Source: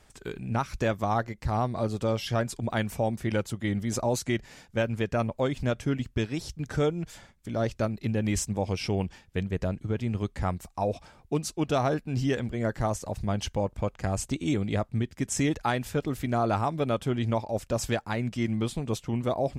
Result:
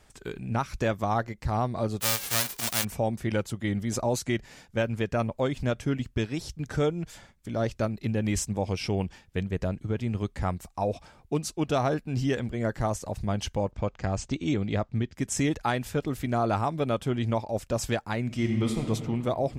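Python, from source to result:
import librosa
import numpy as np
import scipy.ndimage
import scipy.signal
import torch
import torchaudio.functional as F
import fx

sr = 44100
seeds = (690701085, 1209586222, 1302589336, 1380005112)

y = fx.envelope_flatten(x, sr, power=0.1, at=(2.0, 2.83), fade=0.02)
y = fx.lowpass(y, sr, hz=6700.0, slope=24, at=(13.71, 15.15))
y = fx.reverb_throw(y, sr, start_s=18.24, length_s=0.63, rt60_s=2.4, drr_db=2.5)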